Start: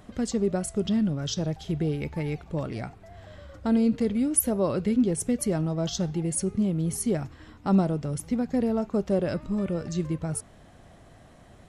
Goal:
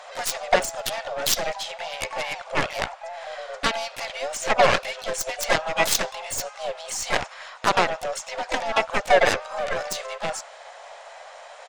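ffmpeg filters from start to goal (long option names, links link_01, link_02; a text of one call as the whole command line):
ffmpeg -i in.wav -filter_complex "[0:a]afftfilt=real='re*between(b*sr/4096,510,7700)':imag='im*between(b*sr/4096,510,7700)':win_size=4096:overlap=0.75,aeval=exprs='0.141*(cos(1*acos(clip(val(0)/0.141,-1,1)))-cos(1*PI/2))+0.00501*(cos(2*acos(clip(val(0)/0.141,-1,1)))-cos(2*PI/2))+0.00631*(cos(6*acos(clip(val(0)/0.141,-1,1)))-cos(6*PI/2))+0.0316*(cos(7*acos(clip(val(0)/0.141,-1,1)))-cos(7*PI/2))':channel_layout=same,asplit=3[link_01][link_02][link_03];[link_02]asetrate=35002,aresample=44100,atempo=1.25992,volume=-14dB[link_04];[link_03]asetrate=55563,aresample=44100,atempo=0.793701,volume=-5dB[link_05];[link_01][link_04][link_05]amix=inputs=3:normalize=0,alimiter=level_in=23.5dB:limit=-1dB:release=50:level=0:latency=1,volume=-5dB" out.wav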